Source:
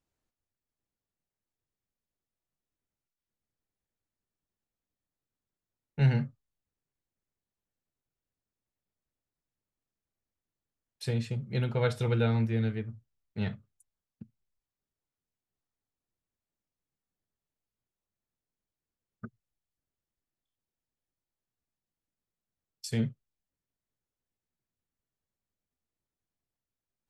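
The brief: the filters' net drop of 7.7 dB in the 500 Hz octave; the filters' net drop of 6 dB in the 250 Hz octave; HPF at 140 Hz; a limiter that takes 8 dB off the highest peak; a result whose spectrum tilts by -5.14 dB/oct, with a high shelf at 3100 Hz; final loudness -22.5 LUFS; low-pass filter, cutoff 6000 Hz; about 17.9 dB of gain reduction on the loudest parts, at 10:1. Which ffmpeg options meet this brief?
-af "highpass=140,lowpass=6k,equalizer=f=250:t=o:g=-5,equalizer=f=500:t=o:g=-7.5,highshelf=f=3.1k:g=9,acompressor=threshold=-42dB:ratio=10,volume=27.5dB,alimiter=limit=-10dB:level=0:latency=1"

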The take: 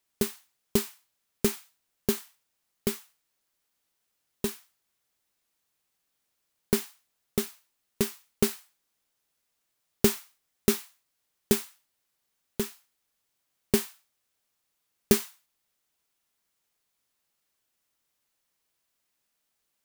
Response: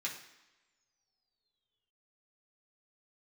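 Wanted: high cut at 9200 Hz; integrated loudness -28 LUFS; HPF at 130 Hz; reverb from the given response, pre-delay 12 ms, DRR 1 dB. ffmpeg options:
-filter_complex "[0:a]highpass=130,lowpass=9.2k,asplit=2[a][b];[1:a]atrim=start_sample=2205,adelay=12[c];[b][c]afir=irnorm=-1:irlink=0,volume=-3dB[d];[a][d]amix=inputs=2:normalize=0,volume=3dB"

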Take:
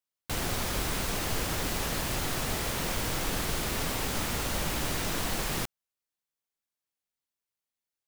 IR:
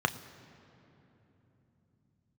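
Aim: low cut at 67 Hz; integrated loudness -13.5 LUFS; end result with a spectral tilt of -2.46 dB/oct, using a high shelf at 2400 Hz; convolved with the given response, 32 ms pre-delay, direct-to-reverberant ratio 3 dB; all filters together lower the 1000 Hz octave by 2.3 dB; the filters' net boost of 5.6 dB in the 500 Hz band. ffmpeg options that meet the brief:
-filter_complex "[0:a]highpass=67,equalizer=f=500:t=o:g=8.5,equalizer=f=1k:t=o:g=-7.5,highshelf=f=2.4k:g=7,asplit=2[a][b];[1:a]atrim=start_sample=2205,adelay=32[c];[b][c]afir=irnorm=-1:irlink=0,volume=-13dB[d];[a][d]amix=inputs=2:normalize=0,volume=12dB"

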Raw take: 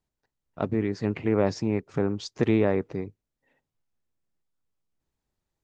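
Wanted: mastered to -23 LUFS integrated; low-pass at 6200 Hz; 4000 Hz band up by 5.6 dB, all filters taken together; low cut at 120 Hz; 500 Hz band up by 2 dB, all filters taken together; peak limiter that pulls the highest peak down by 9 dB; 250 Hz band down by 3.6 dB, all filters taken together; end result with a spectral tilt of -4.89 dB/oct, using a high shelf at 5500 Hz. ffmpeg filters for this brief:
-af "highpass=120,lowpass=6.2k,equalizer=f=250:t=o:g=-6.5,equalizer=f=500:t=o:g=4.5,equalizer=f=4k:t=o:g=4.5,highshelf=f=5.5k:g=8,volume=7.5dB,alimiter=limit=-10.5dB:level=0:latency=1"

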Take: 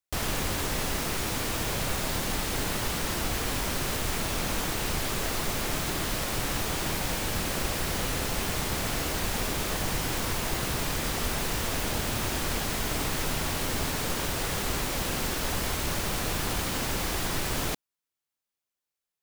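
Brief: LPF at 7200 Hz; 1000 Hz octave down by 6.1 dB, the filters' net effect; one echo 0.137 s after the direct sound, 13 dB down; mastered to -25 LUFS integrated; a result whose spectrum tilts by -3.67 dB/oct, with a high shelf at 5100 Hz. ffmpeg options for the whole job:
-af "lowpass=7.2k,equalizer=f=1k:t=o:g=-8.5,highshelf=f=5.1k:g=7,aecho=1:1:137:0.224,volume=4.5dB"

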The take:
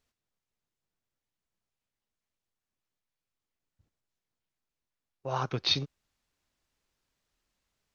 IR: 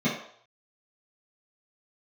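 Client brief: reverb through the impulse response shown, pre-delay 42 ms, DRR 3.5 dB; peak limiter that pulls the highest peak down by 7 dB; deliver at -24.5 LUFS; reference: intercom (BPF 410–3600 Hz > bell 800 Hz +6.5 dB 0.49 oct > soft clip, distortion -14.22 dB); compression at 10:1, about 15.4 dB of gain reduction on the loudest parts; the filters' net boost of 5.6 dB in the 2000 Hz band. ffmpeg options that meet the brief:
-filter_complex "[0:a]equalizer=f=2k:t=o:g=8.5,acompressor=threshold=-35dB:ratio=10,alimiter=level_in=4.5dB:limit=-24dB:level=0:latency=1,volume=-4.5dB,asplit=2[a][b];[1:a]atrim=start_sample=2205,adelay=42[c];[b][c]afir=irnorm=-1:irlink=0,volume=-15.5dB[d];[a][d]amix=inputs=2:normalize=0,highpass=410,lowpass=3.6k,equalizer=f=800:t=o:w=0.49:g=6.5,asoftclip=threshold=-33.5dB,volume=19.5dB"

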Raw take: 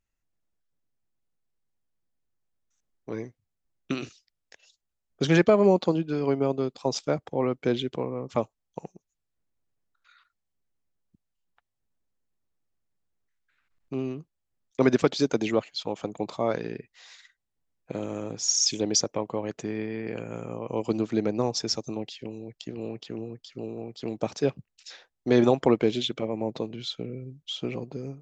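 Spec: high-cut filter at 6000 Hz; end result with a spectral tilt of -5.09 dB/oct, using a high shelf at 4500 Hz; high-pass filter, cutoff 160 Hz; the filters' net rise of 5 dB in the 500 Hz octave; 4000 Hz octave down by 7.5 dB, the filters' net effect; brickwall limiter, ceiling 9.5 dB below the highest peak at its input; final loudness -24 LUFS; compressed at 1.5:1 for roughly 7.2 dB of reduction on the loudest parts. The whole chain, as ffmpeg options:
-af "highpass=160,lowpass=6k,equalizer=f=500:t=o:g=6.5,equalizer=f=4k:t=o:g=-3,highshelf=f=4.5k:g=-8.5,acompressor=threshold=-32dB:ratio=1.5,volume=9.5dB,alimiter=limit=-10.5dB:level=0:latency=1"

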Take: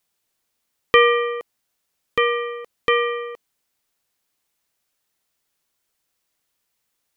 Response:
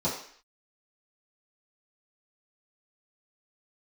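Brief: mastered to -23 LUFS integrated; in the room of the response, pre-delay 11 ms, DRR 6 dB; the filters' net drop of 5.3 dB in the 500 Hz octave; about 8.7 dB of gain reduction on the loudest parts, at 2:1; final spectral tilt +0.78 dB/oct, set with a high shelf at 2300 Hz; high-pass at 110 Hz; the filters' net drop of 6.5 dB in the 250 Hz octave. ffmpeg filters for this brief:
-filter_complex "[0:a]highpass=110,equalizer=f=250:t=o:g=-7.5,equalizer=f=500:t=o:g=-3.5,highshelf=f=2.3k:g=-4.5,acompressor=threshold=-27dB:ratio=2,asplit=2[a][b];[1:a]atrim=start_sample=2205,adelay=11[c];[b][c]afir=irnorm=-1:irlink=0,volume=-15.5dB[d];[a][d]amix=inputs=2:normalize=0,volume=6.5dB"

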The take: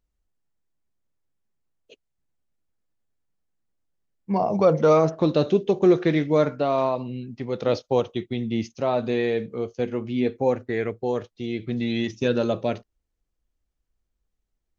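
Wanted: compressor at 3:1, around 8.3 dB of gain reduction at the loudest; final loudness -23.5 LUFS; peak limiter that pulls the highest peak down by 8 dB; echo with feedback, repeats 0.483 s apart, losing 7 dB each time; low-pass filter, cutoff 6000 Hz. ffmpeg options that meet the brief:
-af "lowpass=6k,acompressor=threshold=-24dB:ratio=3,alimiter=limit=-20.5dB:level=0:latency=1,aecho=1:1:483|966|1449|1932|2415:0.447|0.201|0.0905|0.0407|0.0183,volume=7dB"

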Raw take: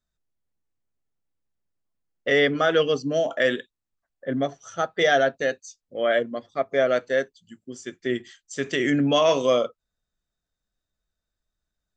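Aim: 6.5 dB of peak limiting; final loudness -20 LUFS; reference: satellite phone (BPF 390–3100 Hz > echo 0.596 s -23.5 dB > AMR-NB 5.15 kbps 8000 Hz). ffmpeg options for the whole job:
-af "alimiter=limit=-15dB:level=0:latency=1,highpass=390,lowpass=3.1k,aecho=1:1:596:0.0668,volume=9dB" -ar 8000 -c:a libopencore_amrnb -b:a 5150

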